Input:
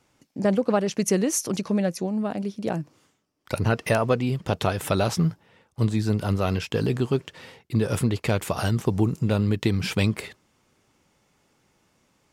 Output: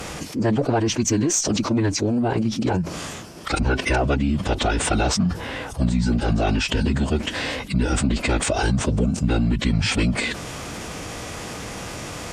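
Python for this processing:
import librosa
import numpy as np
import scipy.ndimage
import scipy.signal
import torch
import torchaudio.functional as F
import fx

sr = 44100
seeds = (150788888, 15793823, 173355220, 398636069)

y = fx.pitch_keep_formants(x, sr, semitones=-10.0)
y = fx.cheby_harmonics(y, sr, harmonics=(8,), levels_db=(-36,), full_scale_db=-9.5)
y = fx.env_flatten(y, sr, amount_pct=70)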